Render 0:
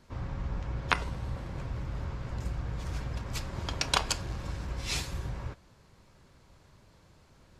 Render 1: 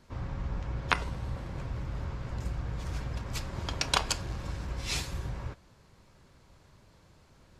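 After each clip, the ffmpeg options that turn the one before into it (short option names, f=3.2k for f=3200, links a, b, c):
-af anull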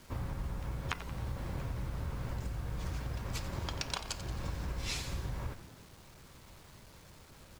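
-filter_complex "[0:a]acompressor=threshold=-36dB:ratio=12,acrusher=bits=9:mix=0:aa=0.000001,asplit=7[a][b][c][d][e][f][g];[b]adelay=89,afreqshift=-77,volume=-13dB[h];[c]adelay=178,afreqshift=-154,volume=-18dB[i];[d]adelay=267,afreqshift=-231,volume=-23.1dB[j];[e]adelay=356,afreqshift=-308,volume=-28.1dB[k];[f]adelay=445,afreqshift=-385,volume=-33.1dB[l];[g]adelay=534,afreqshift=-462,volume=-38.2dB[m];[a][h][i][j][k][l][m]amix=inputs=7:normalize=0,volume=2.5dB"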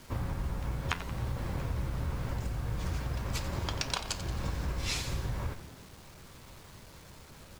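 -af "flanger=delay=7.2:depth=8.7:regen=80:speed=0.77:shape=triangular,volume=8.5dB"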